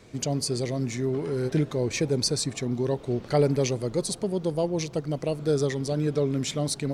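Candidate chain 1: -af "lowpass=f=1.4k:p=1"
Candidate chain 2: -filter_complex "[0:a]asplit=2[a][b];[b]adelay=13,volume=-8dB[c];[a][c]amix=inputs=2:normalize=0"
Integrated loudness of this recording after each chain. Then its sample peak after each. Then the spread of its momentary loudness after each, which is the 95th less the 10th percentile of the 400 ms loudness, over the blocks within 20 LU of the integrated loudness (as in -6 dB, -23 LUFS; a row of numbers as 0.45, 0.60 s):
-28.0, -26.5 LUFS; -12.0, -10.0 dBFS; 6, 4 LU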